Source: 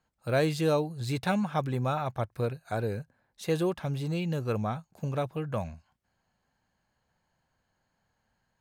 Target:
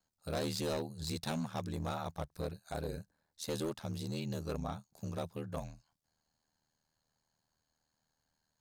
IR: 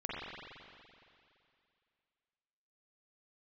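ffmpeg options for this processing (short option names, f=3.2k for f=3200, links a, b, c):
-af "highshelf=f=3.4k:t=q:w=1.5:g=8,aeval=exprs='val(0)*sin(2*PI*39*n/s)':c=same,volume=26dB,asoftclip=hard,volume=-26dB,volume=-5dB"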